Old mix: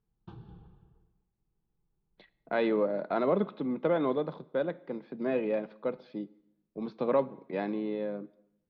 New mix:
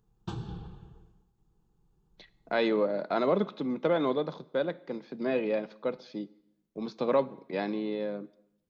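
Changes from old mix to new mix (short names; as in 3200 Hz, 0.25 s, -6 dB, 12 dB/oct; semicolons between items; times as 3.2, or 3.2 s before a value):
background +10.5 dB; master: remove air absorption 310 m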